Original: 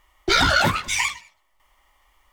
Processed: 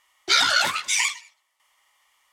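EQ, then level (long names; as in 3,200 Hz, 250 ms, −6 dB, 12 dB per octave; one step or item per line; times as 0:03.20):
high-pass filter 1,500 Hz 6 dB per octave
low-pass filter 11,000 Hz 12 dB per octave
high-shelf EQ 4,500 Hz +6 dB
0.0 dB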